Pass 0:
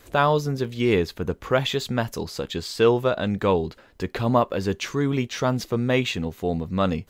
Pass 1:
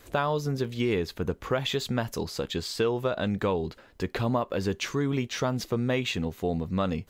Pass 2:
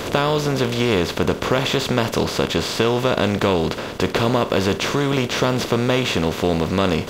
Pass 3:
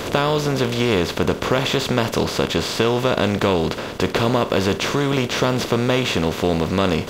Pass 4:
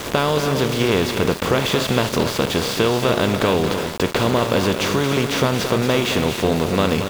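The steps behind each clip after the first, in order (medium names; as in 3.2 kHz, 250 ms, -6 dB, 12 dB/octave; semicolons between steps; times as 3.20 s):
compression, threshold -21 dBFS, peak gain reduction 8.5 dB; trim -1.5 dB
spectral levelling over time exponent 0.4; trim +3.5 dB
no audible change
on a send: loudspeakers at several distances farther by 77 m -9 dB, 98 m -11 dB; on the sum: small samples zeroed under -26 dBFS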